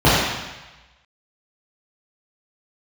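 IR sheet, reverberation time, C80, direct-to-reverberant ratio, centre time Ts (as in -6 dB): 1.1 s, 0.5 dB, -11.0 dB, 94 ms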